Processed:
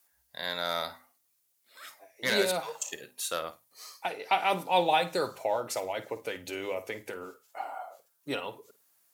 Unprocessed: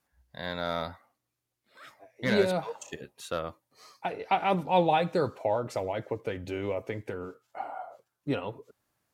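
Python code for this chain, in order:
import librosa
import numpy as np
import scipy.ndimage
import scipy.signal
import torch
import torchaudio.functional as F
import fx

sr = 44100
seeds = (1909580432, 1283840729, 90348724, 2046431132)

y = fx.riaa(x, sr, side='recording')
y = fx.hum_notches(y, sr, base_hz=50, count=5)
y = fx.room_flutter(y, sr, wall_m=8.9, rt60_s=0.21)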